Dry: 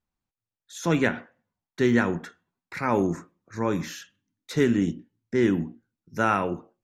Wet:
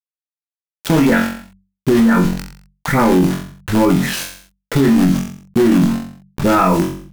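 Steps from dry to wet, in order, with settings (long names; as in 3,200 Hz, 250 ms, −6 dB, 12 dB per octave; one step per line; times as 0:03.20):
every frequency bin delayed by itself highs late, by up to 154 ms
RIAA equalisation playback
reverb reduction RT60 1.5 s
in parallel at −12 dB: wrap-around overflow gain 14.5 dB
on the sum: parametric band 92 Hz −14 dB 0.82 octaves
bit reduction 7 bits
mains-hum notches 50/100/150/200 Hz
on a send: flutter between parallel walls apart 3.6 metres, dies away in 0.27 s
on the sum: wrong playback speed 25 fps video run at 24 fps
boost into a limiter +13 dB
envelope flattener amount 50%
level −5 dB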